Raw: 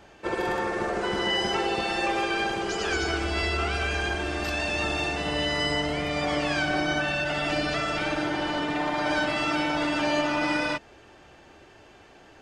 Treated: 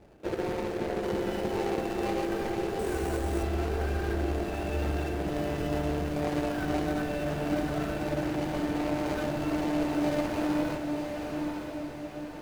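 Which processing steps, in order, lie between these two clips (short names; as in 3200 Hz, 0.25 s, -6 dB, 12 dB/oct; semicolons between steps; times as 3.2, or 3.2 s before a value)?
median filter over 41 samples; diffused feedback echo 0.952 s, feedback 53%, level -5 dB; 2.79–3.43 sample-rate reducer 8500 Hz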